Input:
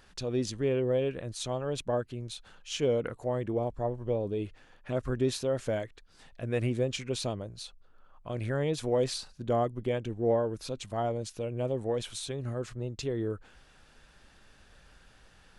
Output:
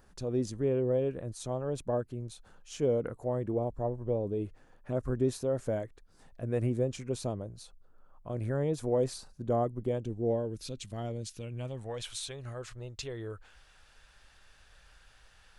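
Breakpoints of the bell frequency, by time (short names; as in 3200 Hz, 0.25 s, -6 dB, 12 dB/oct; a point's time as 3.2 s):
bell -12.5 dB 2 oct
9.75 s 3100 Hz
10.62 s 900 Hz
11.17 s 900 Hz
12.11 s 240 Hz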